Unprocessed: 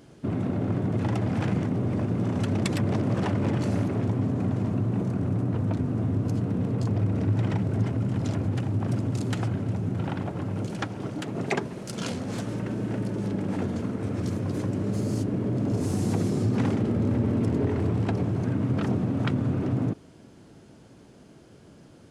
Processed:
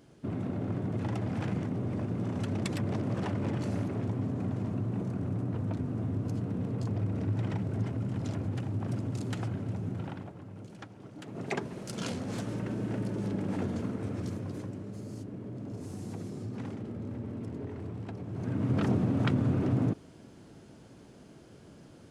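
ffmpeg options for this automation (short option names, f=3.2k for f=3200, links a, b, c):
-af "volume=17.5dB,afade=t=out:st=9.9:d=0.48:silence=0.354813,afade=t=in:st=11.11:d=0.65:silence=0.266073,afade=t=out:st=13.84:d=1.04:silence=0.316228,afade=t=in:st=18.26:d=0.54:silence=0.237137"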